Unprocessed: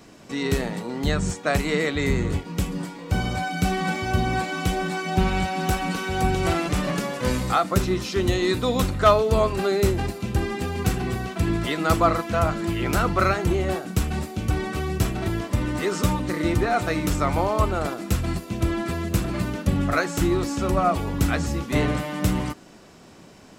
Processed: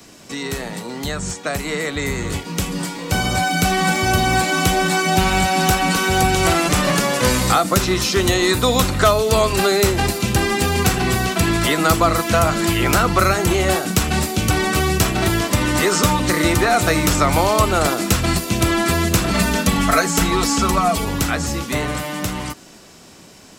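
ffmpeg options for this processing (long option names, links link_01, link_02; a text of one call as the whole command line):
ffmpeg -i in.wav -filter_complex "[0:a]asettb=1/sr,asplit=3[link_01][link_02][link_03];[link_01]atrim=end=19.304[link_04];[link_02]atrim=start=19.3:end=21.05,asetpts=PTS-STARTPTS,afade=type=in:duration=0.004:curve=qsin,afade=type=out:start_time=1.746:duration=0.004:curve=qsin,aecho=1:1:4.5:0.78,atrim=end_sample=77175[link_05];[link_03]atrim=start=21.046[link_06];[link_04][link_05]acrossfade=duration=0.004:curve1=hsin:curve2=qsin[link_07];[link_07][link_06]acrossfade=duration=0.004:curve1=qsin:curve2=hsin,acrossover=split=120|590|1700|6700[link_08][link_09][link_10][link_11][link_12];[link_08]acompressor=threshold=-33dB:ratio=4[link_13];[link_09]acompressor=threshold=-31dB:ratio=4[link_14];[link_10]acompressor=threshold=-30dB:ratio=4[link_15];[link_11]acompressor=threshold=-40dB:ratio=4[link_16];[link_12]acompressor=threshold=-47dB:ratio=4[link_17];[link_13][link_14][link_15][link_16][link_17]amix=inputs=5:normalize=0,highshelf=frequency=3100:gain=10.5,dynaudnorm=framelen=180:gausssize=31:maxgain=10dB,volume=2dB" out.wav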